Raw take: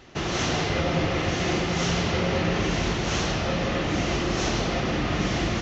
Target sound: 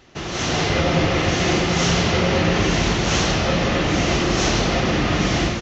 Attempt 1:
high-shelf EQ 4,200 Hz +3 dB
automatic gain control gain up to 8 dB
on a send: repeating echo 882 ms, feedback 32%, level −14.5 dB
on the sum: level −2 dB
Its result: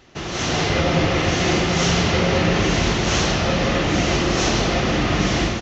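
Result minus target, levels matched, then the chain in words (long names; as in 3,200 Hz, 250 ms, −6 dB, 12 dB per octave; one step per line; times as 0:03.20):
echo 456 ms early
high-shelf EQ 4,200 Hz +3 dB
automatic gain control gain up to 8 dB
on a send: repeating echo 1,338 ms, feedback 32%, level −14.5 dB
on the sum: level −2 dB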